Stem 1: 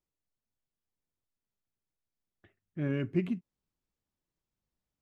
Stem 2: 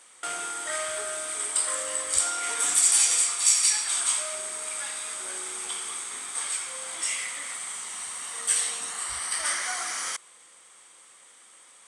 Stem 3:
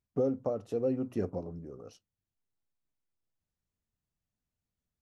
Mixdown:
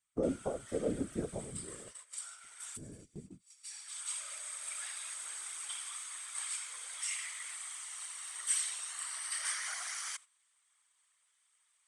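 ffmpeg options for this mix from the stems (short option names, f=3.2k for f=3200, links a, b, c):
-filter_complex "[0:a]lowpass=1.4k,equalizer=f=180:w=3.2:g=5,acompressor=threshold=-41dB:ratio=3,volume=-3.5dB,asplit=2[a][b];[1:a]highpass=1.2k,volume=-2.5dB,afade=t=in:st=3.39:d=0.44:silence=0.266073[c];[2:a]volume=1.5dB[d];[b]apad=whole_len=523740[e];[c][e]sidechaincompress=threshold=-58dB:ratio=20:attack=8.8:release=873[f];[a][f][d]amix=inputs=3:normalize=0,afftfilt=real='hypot(re,im)*cos(2*PI*random(0))':imag='hypot(re,im)*sin(2*PI*random(1))':win_size=512:overlap=0.75,agate=range=-12dB:threshold=-50dB:ratio=16:detection=peak"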